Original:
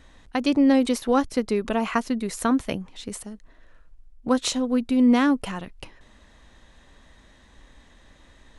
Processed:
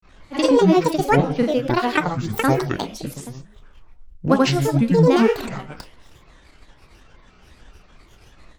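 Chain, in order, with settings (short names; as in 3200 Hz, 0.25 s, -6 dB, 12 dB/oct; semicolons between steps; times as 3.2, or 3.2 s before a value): transient shaper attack +2 dB, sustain -7 dB; Schroeder reverb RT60 0.57 s, DRR 8 dB; grains 0.148 s, grains 20/s, pitch spread up and down by 12 st; gain +6.5 dB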